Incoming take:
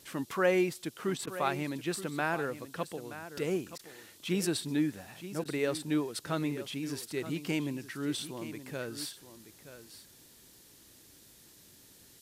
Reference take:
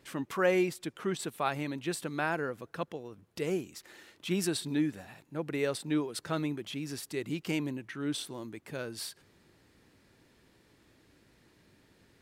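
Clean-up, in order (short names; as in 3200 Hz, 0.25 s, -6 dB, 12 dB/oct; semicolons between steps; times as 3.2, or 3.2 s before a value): interpolate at 1.26/3.78/5.44, 11 ms; noise print and reduce 7 dB; inverse comb 0.925 s -13 dB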